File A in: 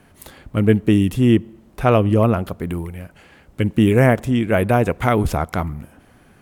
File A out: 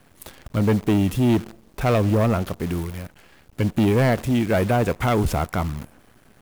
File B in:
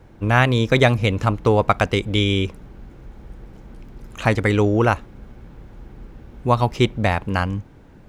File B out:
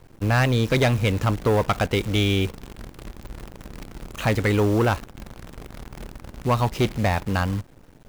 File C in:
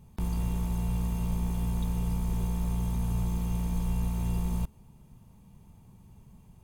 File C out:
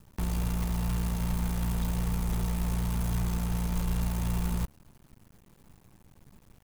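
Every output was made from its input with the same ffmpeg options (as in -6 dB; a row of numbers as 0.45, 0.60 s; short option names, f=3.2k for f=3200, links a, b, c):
-af "asoftclip=type=tanh:threshold=-13.5dB,acrusher=bits=7:dc=4:mix=0:aa=0.000001"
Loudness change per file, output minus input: -3.5, -3.0, 0.0 LU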